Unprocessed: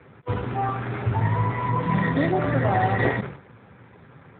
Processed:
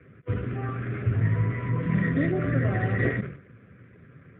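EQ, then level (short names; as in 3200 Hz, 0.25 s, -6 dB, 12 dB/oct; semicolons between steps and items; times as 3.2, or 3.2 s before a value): air absorption 320 m; fixed phaser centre 2100 Hz, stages 4; 0.0 dB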